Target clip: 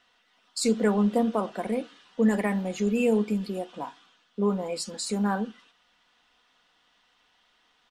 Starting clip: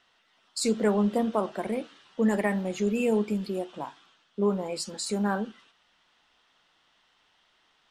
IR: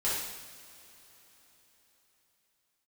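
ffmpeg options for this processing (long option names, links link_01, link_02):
-af "aecho=1:1:4.1:0.36"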